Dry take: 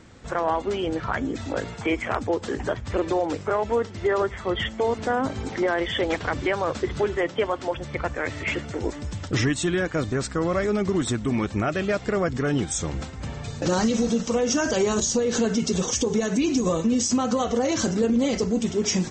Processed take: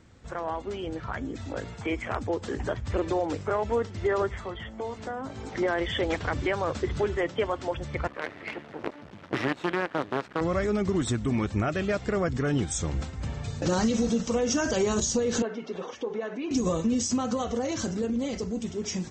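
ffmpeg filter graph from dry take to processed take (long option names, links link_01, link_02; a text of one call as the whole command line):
ffmpeg -i in.wav -filter_complex "[0:a]asettb=1/sr,asplit=3[link_01][link_02][link_03];[link_01]atrim=end=4.404[link_04];[link_02]atrim=start=4.4:end=5.55,asetpts=PTS-STARTPTS,afade=type=in:duration=0.004:curve=qsin,afade=type=out:start_time=1.146:duration=0.004:curve=qsin,acrossover=split=230|640|1300[link_05][link_06][link_07][link_08];[link_05]acompressor=threshold=-45dB:ratio=3[link_09];[link_06]acompressor=threshold=-39dB:ratio=3[link_10];[link_07]acompressor=threshold=-37dB:ratio=3[link_11];[link_08]acompressor=threshold=-46dB:ratio=3[link_12];[link_09][link_10][link_11][link_12]amix=inputs=4:normalize=0,asplit=2[link_13][link_14];[link_14]adelay=18,volume=-11.5dB[link_15];[link_13][link_15]amix=inputs=2:normalize=0,atrim=end_sample=50715[link_16];[link_03]atrim=start=5.546[link_17];[link_04][link_16]acrossfade=duration=0.004:curve1=hsin:curve2=qsin[link_18];[link_18][link_17]acrossfade=duration=0.004:curve1=qsin:curve2=hsin,asettb=1/sr,asplit=3[link_19][link_20][link_21];[link_19]atrim=end=8.074[link_22];[link_20]atrim=start=8.07:end=10.41,asetpts=PTS-STARTPTS,afade=type=in:duration=0.004:curve=qsin,afade=type=out:start_time=2.336:duration=0.004:curve=qsin,acrusher=bits=4:dc=4:mix=0:aa=0.000001,highpass=240,lowpass=2300[link_23];[link_21]atrim=start=10.406[link_24];[link_22][link_23]acrossfade=duration=0.004:curve1=hsin:curve2=qsin[link_25];[link_25][link_24]acrossfade=duration=0.004:curve1=qsin:curve2=hsin,asettb=1/sr,asplit=3[link_26][link_27][link_28];[link_26]atrim=end=15.424[link_29];[link_27]atrim=start=15.42:end=16.51,asetpts=PTS-STARTPTS,afade=type=in:duration=0.004:curve=qsin,afade=type=out:start_time=1.086:duration=0.004:curve=qsin,highpass=440,lowpass=2800,aemphasis=mode=reproduction:type=75kf[link_30];[link_28]atrim=start=16.506[link_31];[link_29][link_30]acrossfade=duration=0.004:curve1=hsin:curve2=qsin[link_32];[link_32][link_31]acrossfade=duration=0.004:curve1=qsin:curve2=hsin,equalizer=frequency=70:width_type=o:width=1.9:gain=5.5,dynaudnorm=framelen=240:gausssize=17:maxgain=5dB,volume=-8.5dB" out.wav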